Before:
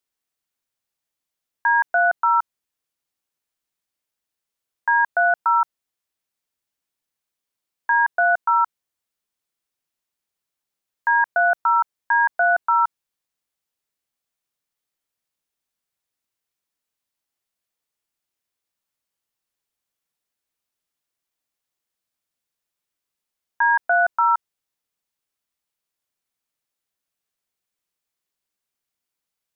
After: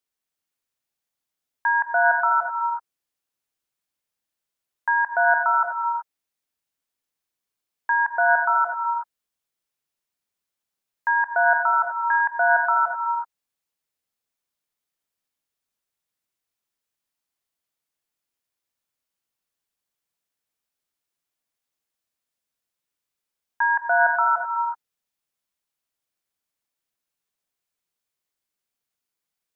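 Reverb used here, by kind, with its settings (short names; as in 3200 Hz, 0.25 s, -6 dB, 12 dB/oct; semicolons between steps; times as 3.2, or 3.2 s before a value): non-linear reverb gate 0.4 s rising, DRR 3.5 dB; gain -2.5 dB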